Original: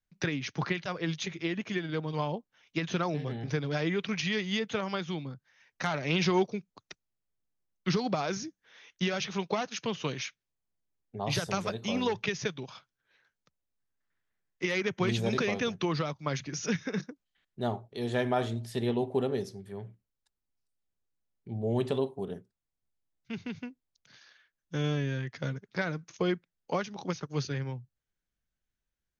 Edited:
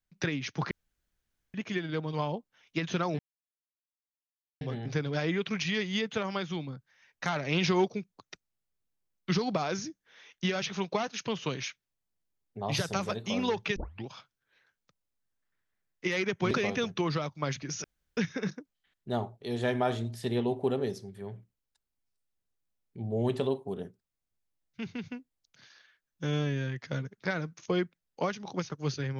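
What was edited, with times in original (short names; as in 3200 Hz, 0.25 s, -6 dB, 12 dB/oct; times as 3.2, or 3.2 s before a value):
0.71–1.54 room tone
3.19 insert silence 1.42 s
12.34 tape start 0.30 s
15.09–15.35 cut
16.68 insert room tone 0.33 s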